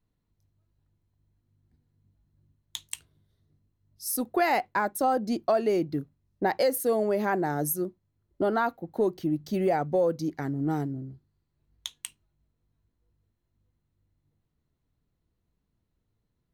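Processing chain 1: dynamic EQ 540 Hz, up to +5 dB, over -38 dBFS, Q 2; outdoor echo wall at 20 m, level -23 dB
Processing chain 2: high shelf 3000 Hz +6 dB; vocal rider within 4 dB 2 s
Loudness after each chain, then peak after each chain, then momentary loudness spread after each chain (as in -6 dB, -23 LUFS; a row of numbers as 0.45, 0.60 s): -25.5, -28.5 LUFS; -11.0, -8.0 dBFS; 18, 10 LU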